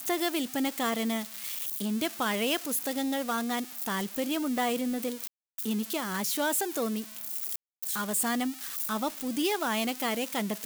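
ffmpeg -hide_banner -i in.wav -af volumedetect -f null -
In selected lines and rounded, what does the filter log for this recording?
mean_volume: -31.1 dB
max_volume: -16.4 dB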